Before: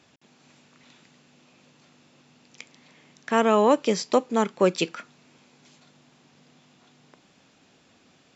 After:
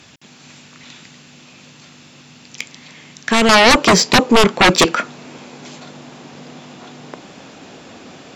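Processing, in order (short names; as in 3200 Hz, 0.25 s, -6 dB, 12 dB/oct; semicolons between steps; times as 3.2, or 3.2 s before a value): bell 520 Hz -7 dB 2.8 oct, from 3.49 s +5.5 dB; sine folder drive 17 dB, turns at -2 dBFS; gain -3.5 dB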